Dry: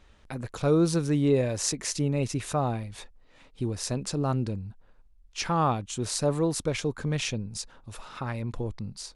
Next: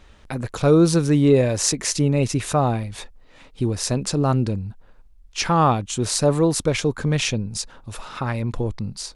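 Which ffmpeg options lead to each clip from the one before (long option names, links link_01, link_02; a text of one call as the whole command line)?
ffmpeg -i in.wav -af "acontrast=31,volume=2.5dB" out.wav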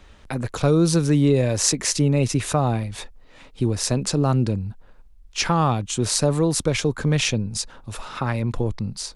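ffmpeg -i in.wav -filter_complex "[0:a]acrossover=split=180|3000[link_01][link_02][link_03];[link_02]acompressor=threshold=-20dB:ratio=2.5[link_04];[link_01][link_04][link_03]amix=inputs=3:normalize=0,volume=1dB" out.wav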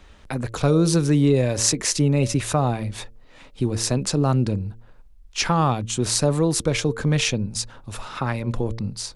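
ffmpeg -i in.wav -af "bandreject=frequency=113.4:width_type=h:width=4,bandreject=frequency=226.8:width_type=h:width=4,bandreject=frequency=340.2:width_type=h:width=4,bandreject=frequency=453.6:width_type=h:width=4,bandreject=frequency=567:width_type=h:width=4" out.wav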